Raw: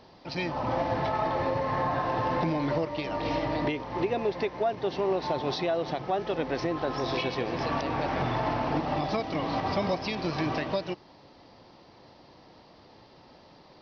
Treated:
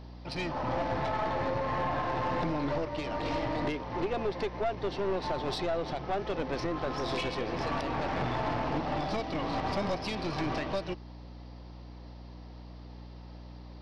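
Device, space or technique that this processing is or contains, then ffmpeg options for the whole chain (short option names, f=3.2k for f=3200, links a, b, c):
valve amplifier with mains hum: -af "aeval=exprs='(tanh(17.8*val(0)+0.45)-tanh(0.45))/17.8':c=same,aeval=exprs='val(0)+0.00562*(sin(2*PI*60*n/s)+sin(2*PI*2*60*n/s)/2+sin(2*PI*3*60*n/s)/3+sin(2*PI*4*60*n/s)/4+sin(2*PI*5*60*n/s)/5)':c=same"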